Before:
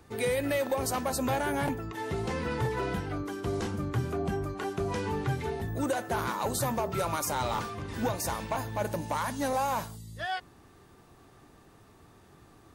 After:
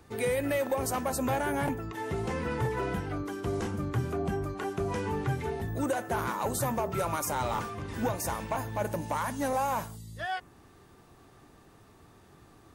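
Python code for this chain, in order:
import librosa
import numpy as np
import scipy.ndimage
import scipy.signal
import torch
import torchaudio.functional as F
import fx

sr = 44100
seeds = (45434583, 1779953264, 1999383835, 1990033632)

y = fx.dynamic_eq(x, sr, hz=4200.0, q=1.7, threshold_db=-54.0, ratio=4.0, max_db=-6)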